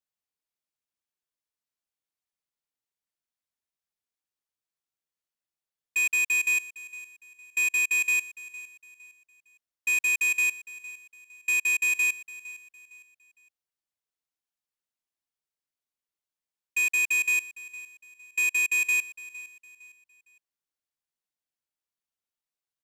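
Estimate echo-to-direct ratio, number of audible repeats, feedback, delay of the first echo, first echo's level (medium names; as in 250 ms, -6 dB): -17.5 dB, 2, 34%, 459 ms, -18.0 dB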